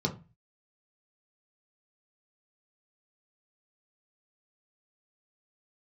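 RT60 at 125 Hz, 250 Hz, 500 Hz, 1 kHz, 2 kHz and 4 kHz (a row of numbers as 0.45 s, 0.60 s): 0.50 s, 0.40 s, 0.30 s, 0.30 s, 0.30 s, 0.20 s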